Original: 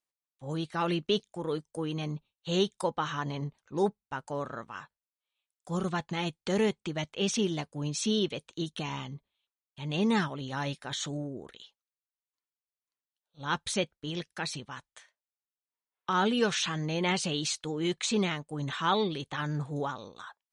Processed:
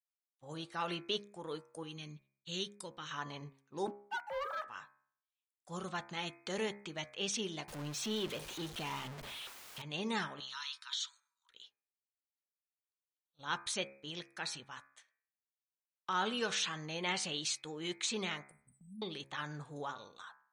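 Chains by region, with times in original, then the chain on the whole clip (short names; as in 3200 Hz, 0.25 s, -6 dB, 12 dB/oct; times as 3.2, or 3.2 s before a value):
1.83–3.11 bell 800 Hz -15 dB 1.6 oct + expander -60 dBFS
3.87–4.68 sine-wave speech + sample leveller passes 2
7.68–9.82 zero-crossing step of -30.5 dBFS + high shelf 3500 Hz -9 dB
10.4–11.5 rippled Chebyshev high-pass 930 Hz, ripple 6 dB + bell 4600 Hz +10 dB 1.3 oct + compressor 2:1, threshold -33 dBFS
18.51–19.02 brick-wall FIR band-stop 230–7800 Hz + comb 3.5 ms, depth 98%
whole clip: gate -52 dBFS, range -9 dB; low shelf 480 Hz -10.5 dB; de-hum 68.01 Hz, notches 37; gain -4 dB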